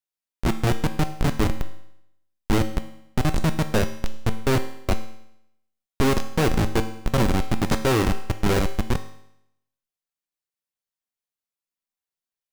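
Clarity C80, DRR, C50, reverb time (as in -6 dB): 14.0 dB, 7.5 dB, 11.5 dB, 0.75 s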